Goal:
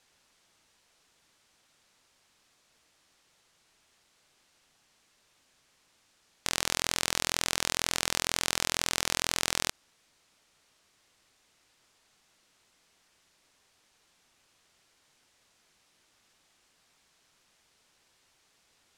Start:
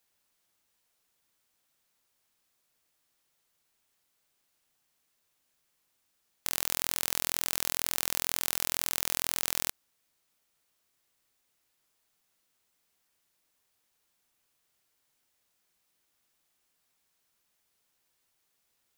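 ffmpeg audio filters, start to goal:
ffmpeg -i in.wav -af "lowpass=7200,alimiter=level_in=15.5dB:limit=-1dB:release=50:level=0:latency=1,volume=-3.5dB" out.wav

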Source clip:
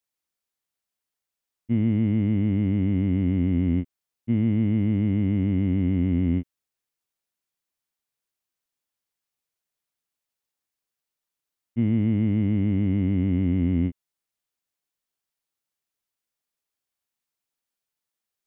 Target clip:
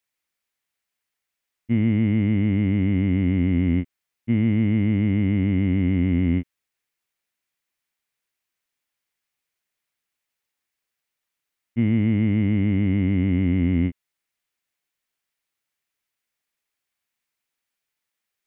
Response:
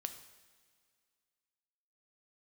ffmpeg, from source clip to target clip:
-af "equalizer=frequency=2100:width=1.3:gain=7.5,volume=2dB"

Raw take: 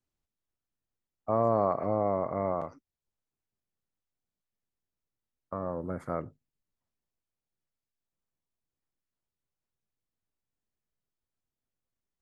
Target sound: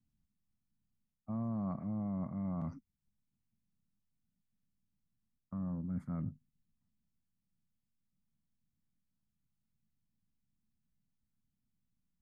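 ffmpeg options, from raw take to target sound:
ffmpeg -i in.wav -af "lowshelf=frequency=300:width_type=q:width=3:gain=12.5,areverse,acompressor=threshold=-31dB:ratio=6,areverse,volume=-5dB" out.wav

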